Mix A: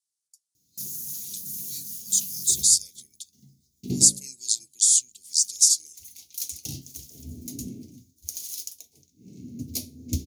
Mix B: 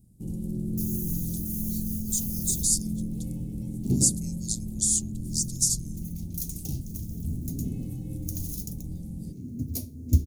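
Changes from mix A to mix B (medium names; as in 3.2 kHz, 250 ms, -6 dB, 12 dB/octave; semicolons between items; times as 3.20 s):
first sound: unmuted; master: remove frequency weighting D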